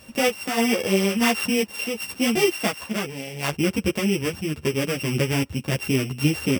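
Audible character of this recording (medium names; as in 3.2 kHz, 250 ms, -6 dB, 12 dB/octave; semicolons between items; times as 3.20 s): a buzz of ramps at a fixed pitch in blocks of 16 samples; random-step tremolo 3.5 Hz; a shimmering, thickened sound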